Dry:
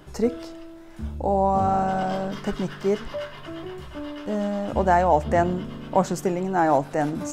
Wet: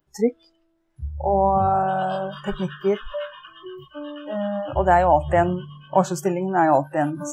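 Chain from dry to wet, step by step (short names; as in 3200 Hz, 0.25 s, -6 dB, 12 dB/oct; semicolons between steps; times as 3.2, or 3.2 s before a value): spectral noise reduction 28 dB; gain +2.5 dB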